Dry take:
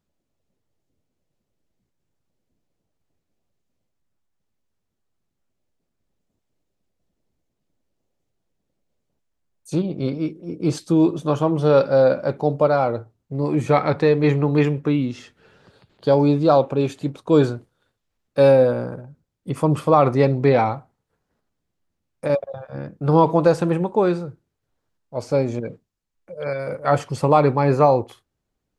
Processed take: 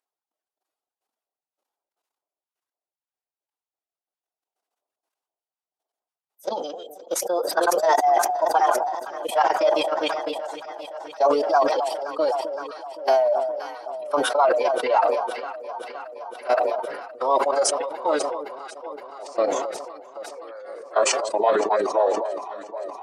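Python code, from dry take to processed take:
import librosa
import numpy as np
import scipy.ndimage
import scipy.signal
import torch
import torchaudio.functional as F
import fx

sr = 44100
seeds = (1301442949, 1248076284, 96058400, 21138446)

y = fx.speed_glide(x, sr, from_pct=161, to_pct=89)
y = fx.level_steps(y, sr, step_db=18)
y = scipy.signal.sosfilt(scipy.signal.butter(4, 530.0, 'highpass', fs=sr, output='sos'), y)
y = fx.notch(y, sr, hz=2200.0, q=17.0)
y = fx.dynamic_eq(y, sr, hz=2400.0, q=1.2, threshold_db=-40.0, ratio=4.0, max_db=-3)
y = fx.dereverb_blind(y, sr, rt60_s=2.0)
y = fx.echo_alternate(y, sr, ms=259, hz=1000.0, feedback_pct=84, wet_db=-12.0)
y = fx.pitch_keep_formants(y, sr, semitones=-4.0)
y = fx.sustainer(y, sr, db_per_s=39.0)
y = y * 10.0 ** (3.5 / 20.0)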